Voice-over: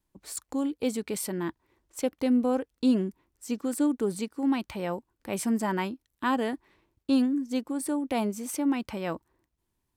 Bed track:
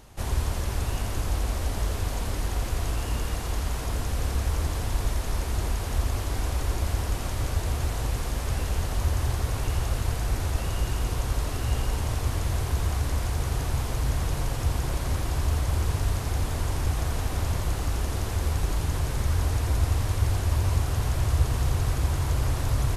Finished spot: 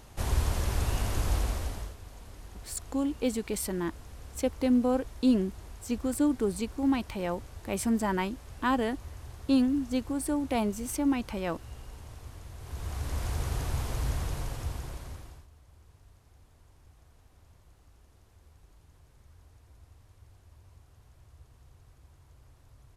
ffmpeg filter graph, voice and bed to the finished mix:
-filter_complex "[0:a]adelay=2400,volume=-0.5dB[a];[1:a]volume=13dB,afade=t=out:st=1.35:d=0.6:silence=0.133352,afade=t=in:st=12.58:d=0.73:silence=0.199526,afade=t=out:st=14.05:d=1.42:silence=0.0421697[b];[a][b]amix=inputs=2:normalize=0"

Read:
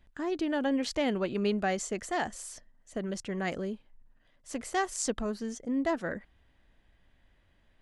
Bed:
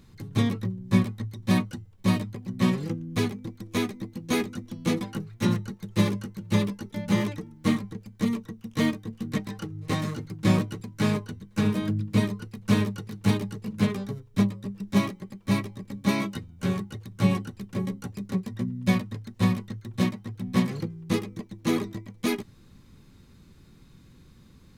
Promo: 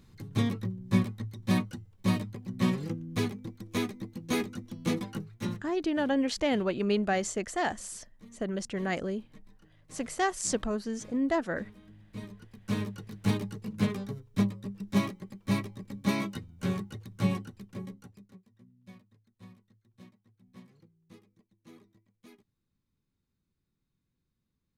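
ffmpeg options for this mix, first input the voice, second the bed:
-filter_complex "[0:a]adelay=5450,volume=1.5dB[a];[1:a]volume=19dB,afade=t=out:st=5.18:d=0.54:silence=0.0707946,afade=t=in:st=12.02:d=1.38:silence=0.0707946,afade=t=out:st=17.04:d=1.35:silence=0.0562341[b];[a][b]amix=inputs=2:normalize=0"

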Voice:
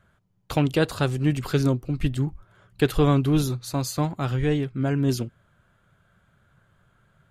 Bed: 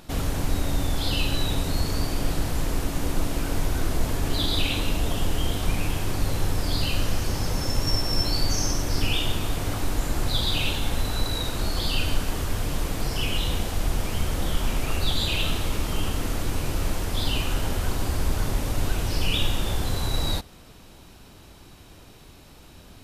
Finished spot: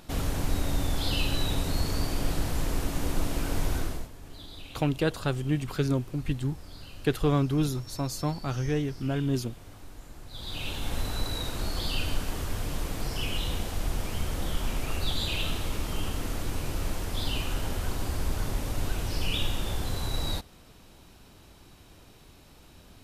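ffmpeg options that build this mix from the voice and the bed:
-filter_complex "[0:a]adelay=4250,volume=-5dB[a];[1:a]volume=12.5dB,afade=t=out:st=3.74:d=0.35:silence=0.133352,afade=t=in:st=10.3:d=0.66:silence=0.16788[b];[a][b]amix=inputs=2:normalize=0"

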